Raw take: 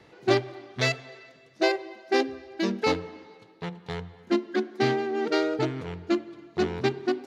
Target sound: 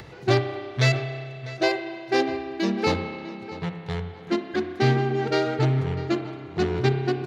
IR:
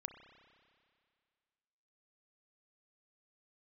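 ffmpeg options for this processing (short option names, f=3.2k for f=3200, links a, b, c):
-filter_complex "[0:a]lowshelf=f=180:t=q:w=1.5:g=7,asplit=2[a][b];[b]adelay=649,lowpass=f=4k:p=1,volume=-15dB,asplit=2[c][d];[d]adelay=649,lowpass=f=4k:p=1,volume=0.25,asplit=2[e][f];[f]adelay=649,lowpass=f=4k:p=1,volume=0.25[g];[a][c][e][g]amix=inputs=4:normalize=0[h];[1:a]atrim=start_sample=2205[i];[h][i]afir=irnorm=-1:irlink=0,acompressor=mode=upward:threshold=-41dB:ratio=2.5,volume=5.5dB"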